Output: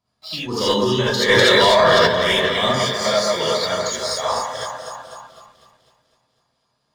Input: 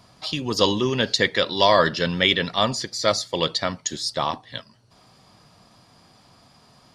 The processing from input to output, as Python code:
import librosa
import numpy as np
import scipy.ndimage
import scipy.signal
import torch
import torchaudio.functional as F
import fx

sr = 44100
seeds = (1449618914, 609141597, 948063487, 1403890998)

p1 = x + fx.echo_alternate(x, sr, ms=125, hz=1700.0, feedback_pct=83, wet_db=-4.0, dry=0)
p2 = fx.leveller(p1, sr, passes=2)
p3 = fx.noise_reduce_blind(p2, sr, reduce_db=10)
p4 = fx.rev_gated(p3, sr, seeds[0], gate_ms=100, shape='rising', drr_db=-7.5)
p5 = fx.env_flatten(p4, sr, amount_pct=100, at=(1.28, 2.06), fade=0.02)
y = p5 * 10.0 ** (-13.0 / 20.0)